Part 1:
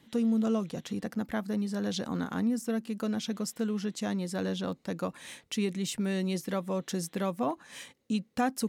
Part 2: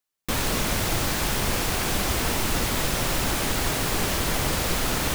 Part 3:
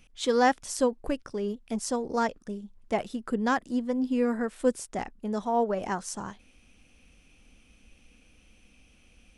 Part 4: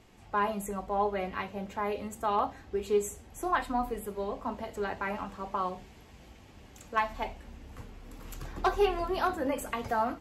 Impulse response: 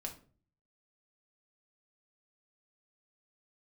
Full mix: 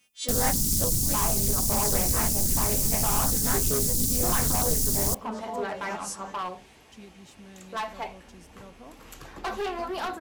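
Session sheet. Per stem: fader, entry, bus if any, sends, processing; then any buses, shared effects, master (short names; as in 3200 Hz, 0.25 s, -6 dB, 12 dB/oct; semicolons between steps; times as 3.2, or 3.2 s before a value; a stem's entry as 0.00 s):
-18.0 dB, 1.40 s, no send, dry
-0.5 dB, 0.00 s, send -22.5 dB, inverse Chebyshev band-stop 860–1800 Hz, stop band 80 dB; high shelf 5700 Hz +9 dB
-10.0 dB, 0.00 s, send -6 dB, frequency quantiser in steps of 2 st; HPF 170 Hz
+2.5 dB, 0.80 s, no send, low shelf 220 Hz -11 dB; overloaded stage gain 30 dB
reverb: on, RT60 0.40 s, pre-delay 5 ms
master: Doppler distortion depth 0.63 ms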